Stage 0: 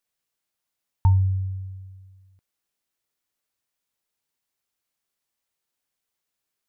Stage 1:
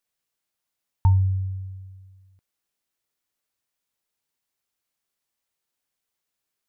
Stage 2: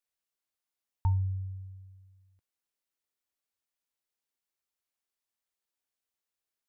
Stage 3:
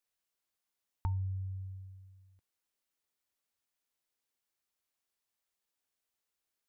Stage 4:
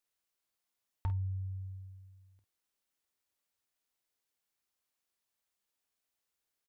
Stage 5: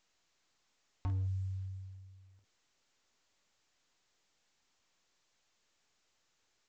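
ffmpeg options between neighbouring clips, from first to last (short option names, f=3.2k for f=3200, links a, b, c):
-af anull
-af "equalizer=f=150:t=o:w=0.37:g=-14,volume=-8dB"
-af "acompressor=threshold=-41dB:ratio=2,volume=2dB"
-af "volume=27.5dB,asoftclip=hard,volume=-27.5dB,aecho=1:1:30|49:0.178|0.316"
-af "asoftclip=type=hard:threshold=-32.5dB,volume=1dB" -ar 16000 -c:a pcm_mulaw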